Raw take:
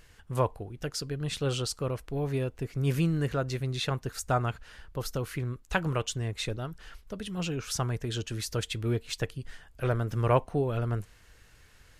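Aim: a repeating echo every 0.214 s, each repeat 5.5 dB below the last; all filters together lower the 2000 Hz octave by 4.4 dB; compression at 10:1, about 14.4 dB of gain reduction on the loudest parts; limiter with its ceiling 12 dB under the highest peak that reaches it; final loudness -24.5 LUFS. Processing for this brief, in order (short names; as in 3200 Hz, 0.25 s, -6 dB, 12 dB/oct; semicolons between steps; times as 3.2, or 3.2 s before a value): bell 2000 Hz -6.5 dB; compressor 10:1, threshold -33 dBFS; limiter -33.5 dBFS; feedback echo 0.214 s, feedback 53%, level -5.5 dB; gain +17.5 dB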